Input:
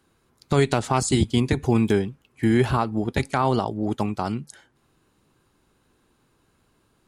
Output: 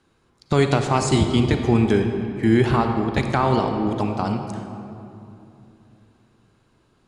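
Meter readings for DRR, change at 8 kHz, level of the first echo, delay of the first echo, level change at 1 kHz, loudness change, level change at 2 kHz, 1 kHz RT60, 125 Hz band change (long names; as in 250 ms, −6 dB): 5.0 dB, −1.5 dB, no echo audible, no echo audible, +3.0 dB, +2.5 dB, +2.5 dB, 2.7 s, +3.0 dB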